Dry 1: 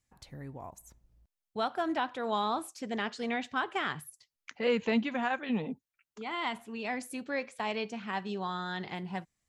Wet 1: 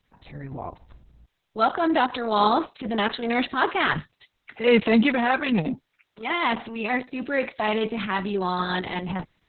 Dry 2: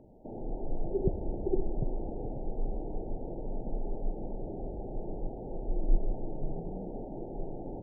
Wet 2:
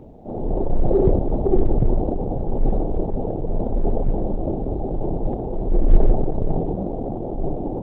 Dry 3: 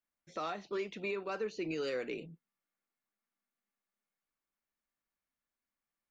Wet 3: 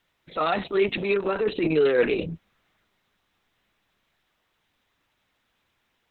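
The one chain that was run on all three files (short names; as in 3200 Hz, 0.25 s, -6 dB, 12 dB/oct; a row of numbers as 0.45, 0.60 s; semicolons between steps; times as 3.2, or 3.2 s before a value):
transient shaper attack -7 dB, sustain +4 dB; Opus 6 kbps 48000 Hz; match loudness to -24 LUFS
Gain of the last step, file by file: +12.0, +15.5, +17.5 dB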